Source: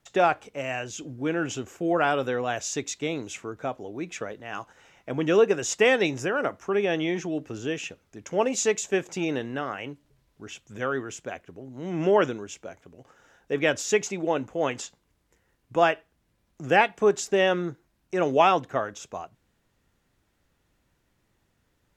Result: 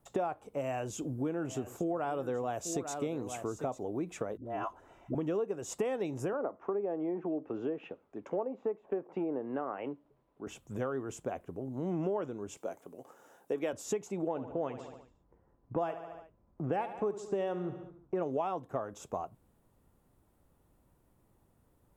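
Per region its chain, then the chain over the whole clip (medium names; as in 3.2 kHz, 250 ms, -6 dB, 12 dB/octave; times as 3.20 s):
0.60–3.84 s: treble shelf 7.2 kHz +5 dB + delay 846 ms -14.5 dB
4.37–5.15 s: treble shelf 4.4 kHz -11 dB + comb 3 ms, depth 48% + phase dispersion highs, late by 88 ms, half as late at 500 Hz
6.33–10.47 s: low-pass that closes with the level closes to 1.2 kHz, closed at -24 dBFS + three-band isolator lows -16 dB, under 220 Hz, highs -21 dB, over 3.4 kHz
12.57–13.73 s: high-pass 240 Hz + treble shelf 4 kHz +7 dB
14.28–18.23 s: level-controlled noise filter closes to 1.4 kHz, open at -16 dBFS + feedback delay 72 ms, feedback 54%, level -14 dB
whole clip: high-order bell 3.2 kHz -12.5 dB 2.5 oct; compression 6:1, threshold -34 dBFS; trim +2.5 dB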